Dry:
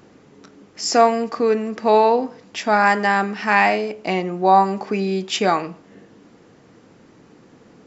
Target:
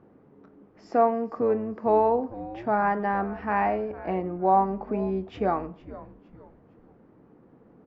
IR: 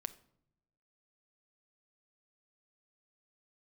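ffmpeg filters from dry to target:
-filter_complex "[0:a]lowpass=1100,asplit=2[link_01][link_02];[link_02]asplit=3[link_03][link_04][link_05];[link_03]adelay=458,afreqshift=-130,volume=-16.5dB[link_06];[link_04]adelay=916,afreqshift=-260,volume=-25.1dB[link_07];[link_05]adelay=1374,afreqshift=-390,volume=-33.8dB[link_08];[link_06][link_07][link_08]amix=inputs=3:normalize=0[link_09];[link_01][link_09]amix=inputs=2:normalize=0,volume=-6dB"

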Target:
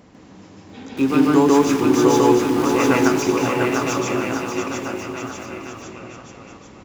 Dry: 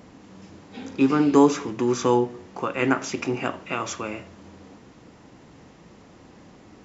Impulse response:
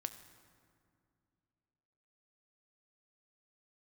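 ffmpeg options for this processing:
-filter_complex "[0:a]asettb=1/sr,asplit=3[link_01][link_02][link_03];[link_01]atrim=end=0.974[link_04];[link_02]atrim=start=0.97:end=3.08,asetpts=PTS-STARTPTS,afade=type=in:duration=0.004:curve=qsin,afade=type=out:start_time=2.106:duration=0.004:curve=qsin,aeval=exprs='val(0)+0.5*0.0355*sgn(val(0))':channel_layout=same[link_05];[link_03]atrim=start=3.076[link_06];[link_04][link_05]acrossfade=duration=0.004:curve1=hsin:curve2=qsin[link_07];[link_07][link_06]acrossfade=duration=0.004:curve1=qsin:curve2=hsin,aecho=1:1:700|1295|1801|2231|2596:0.631|0.398|0.251|0.158|0.1,asplit=2[link_08][link_09];[1:a]atrim=start_sample=2205,adelay=149[link_10];[link_09][link_10]afir=irnorm=-1:irlink=0,volume=4dB[link_11];[link_08][link_11]amix=inputs=2:normalize=0,volume=-1dB"

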